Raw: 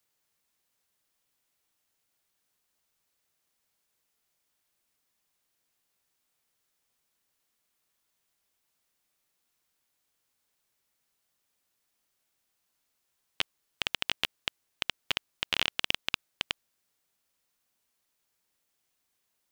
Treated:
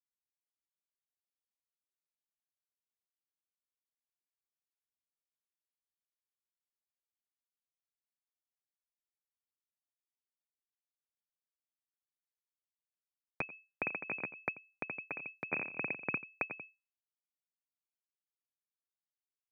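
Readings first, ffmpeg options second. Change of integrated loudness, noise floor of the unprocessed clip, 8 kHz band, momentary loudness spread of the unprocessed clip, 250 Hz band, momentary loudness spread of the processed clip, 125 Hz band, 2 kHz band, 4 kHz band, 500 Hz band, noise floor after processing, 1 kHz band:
−6.5 dB, −79 dBFS, below −30 dB, 7 LU, +2.0 dB, 6 LU, −1.5 dB, −3.0 dB, below −40 dB, +1.0 dB, below −85 dBFS, −4.0 dB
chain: -af "aecho=1:1:87:0.266,acrusher=bits=5:dc=4:mix=0:aa=0.000001,acompressor=threshold=-28dB:ratio=6,asubboost=boost=11.5:cutoff=200,aeval=exprs='0.398*(cos(1*acos(clip(val(0)/0.398,-1,1)))-cos(1*PI/2))+0.0794*(cos(3*acos(clip(val(0)/0.398,-1,1)))-cos(3*PI/2))':channel_layout=same,lowpass=frequency=2200:width_type=q:width=0.5098,lowpass=frequency=2200:width_type=q:width=0.6013,lowpass=frequency=2200:width_type=q:width=0.9,lowpass=frequency=2200:width_type=q:width=2.563,afreqshift=-2600,highpass=frequency=130:width=0.5412,highpass=frequency=130:width=1.3066,acompressor=mode=upward:threshold=-41dB:ratio=2.5,tremolo=f=3.6:d=0.61,equalizer=frequency=1600:width=0.39:gain=-11.5,volume=13dB"

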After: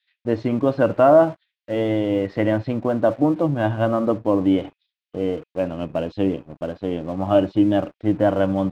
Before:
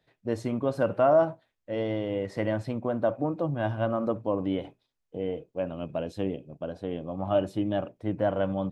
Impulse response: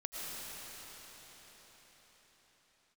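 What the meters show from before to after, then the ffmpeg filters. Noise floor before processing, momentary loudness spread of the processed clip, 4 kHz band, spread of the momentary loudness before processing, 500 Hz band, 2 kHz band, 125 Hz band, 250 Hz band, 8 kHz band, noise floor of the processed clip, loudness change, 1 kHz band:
−80 dBFS, 10 LU, +7.0 dB, 10 LU, +7.5 dB, +7.5 dB, +7.0 dB, +10.5 dB, can't be measured, below −85 dBFS, +8.5 dB, +7.5 dB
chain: -filter_complex "[0:a]lowpass=frequency=4000:width=0.5412,lowpass=frequency=4000:width=1.3066,adynamicequalizer=threshold=0.00562:dfrequency=300:dqfactor=5.1:tfrequency=300:tqfactor=5.1:attack=5:release=100:ratio=0.375:range=3:mode=boostabove:tftype=bell,acrossover=split=2000[link_01][link_02];[link_01]aeval=exprs='sgn(val(0))*max(abs(val(0))-0.00251,0)':channel_layout=same[link_03];[link_03][link_02]amix=inputs=2:normalize=0,volume=7.5dB"

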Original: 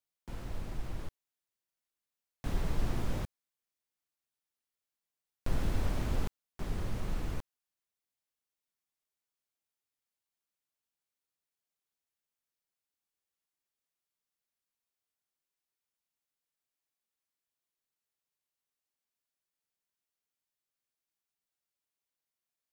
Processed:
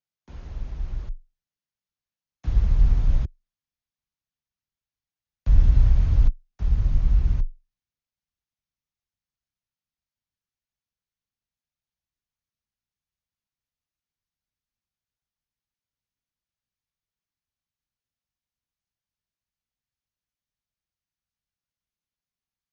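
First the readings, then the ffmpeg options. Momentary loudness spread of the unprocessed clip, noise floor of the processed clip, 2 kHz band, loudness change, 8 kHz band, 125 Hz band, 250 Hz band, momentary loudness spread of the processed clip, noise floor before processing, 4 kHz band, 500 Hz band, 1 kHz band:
11 LU, below −85 dBFS, −2.5 dB, +15.0 dB, can't be measured, +14.0 dB, +2.0 dB, 17 LU, below −85 dBFS, −2.0 dB, −3.5 dB, −2.5 dB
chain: -af "asubboost=boost=8:cutoff=100,afreqshift=22,volume=-2.5dB" -ar 48000 -c:a ac3 -b:a 32k

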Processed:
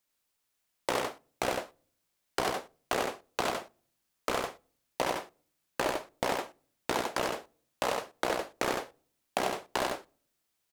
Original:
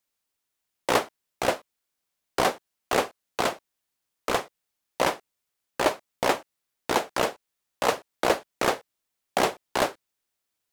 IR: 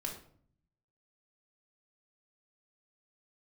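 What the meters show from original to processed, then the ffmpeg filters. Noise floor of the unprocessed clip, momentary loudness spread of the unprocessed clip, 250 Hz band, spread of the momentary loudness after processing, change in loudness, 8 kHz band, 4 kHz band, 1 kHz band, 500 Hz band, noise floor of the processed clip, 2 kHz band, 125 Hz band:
−82 dBFS, 12 LU, −5.5 dB, 9 LU, −6.5 dB, −5.0 dB, −5.5 dB, −6.0 dB, −6.0 dB, −80 dBFS, −5.5 dB, −5.0 dB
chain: -filter_complex "[0:a]acompressor=threshold=-28dB:ratio=6,aecho=1:1:94:0.668,asplit=2[link_01][link_02];[1:a]atrim=start_sample=2205[link_03];[link_02][link_03]afir=irnorm=-1:irlink=0,volume=-22dB[link_04];[link_01][link_04]amix=inputs=2:normalize=0"

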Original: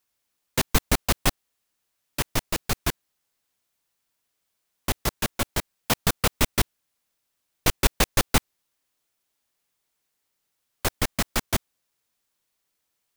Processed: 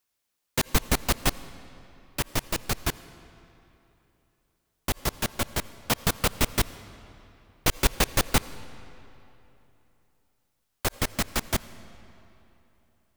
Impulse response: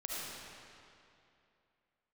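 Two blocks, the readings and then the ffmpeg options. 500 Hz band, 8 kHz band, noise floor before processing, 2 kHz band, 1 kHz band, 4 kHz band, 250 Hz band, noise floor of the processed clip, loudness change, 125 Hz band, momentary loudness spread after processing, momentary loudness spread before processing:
−1.5 dB, −2.0 dB, −78 dBFS, −2.0 dB, −2.0 dB, −2.0 dB, −2.0 dB, −77 dBFS, −2.0 dB, −2.0 dB, 13 LU, 8 LU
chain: -filter_complex "[0:a]asplit=2[link_01][link_02];[1:a]atrim=start_sample=2205,asetrate=37485,aresample=44100[link_03];[link_02][link_03]afir=irnorm=-1:irlink=0,volume=-18.5dB[link_04];[link_01][link_04]amix=inputs=2:normalize=0,volume=-2.5dB"

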